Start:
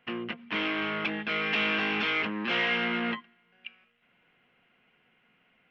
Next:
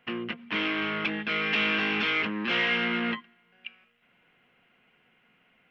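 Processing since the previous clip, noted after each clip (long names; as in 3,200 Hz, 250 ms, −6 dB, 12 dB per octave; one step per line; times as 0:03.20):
dynamic equaliser 740 Hz, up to −4 dB, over −46 dBFS, Q 1.4
level +2 dB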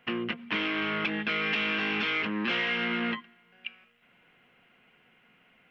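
downward compressor, threshold −28 dBFS, peak gain reduction 6 dB
level +2.5 dB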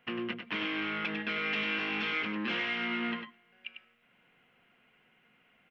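single-tap delay 99 ms −6.5 dB
level −5 dB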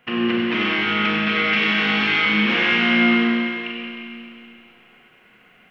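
four-comb reverb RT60 2.6 s, combs from 30 ms, DRR −4.5 dB
level +8.5 dB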